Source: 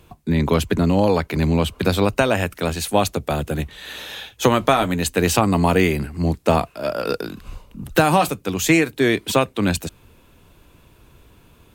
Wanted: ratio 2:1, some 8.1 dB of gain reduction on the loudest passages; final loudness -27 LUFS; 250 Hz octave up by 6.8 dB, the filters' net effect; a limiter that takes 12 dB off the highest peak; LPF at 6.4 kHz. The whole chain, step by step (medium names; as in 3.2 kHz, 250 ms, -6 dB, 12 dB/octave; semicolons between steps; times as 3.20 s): low-pass 6.4 kHz; peaking EQ 250 Hz +9 dB; compression 2:1, threshold -23 dBFS; trim +1 dB; peak limiter -16.5 dBFS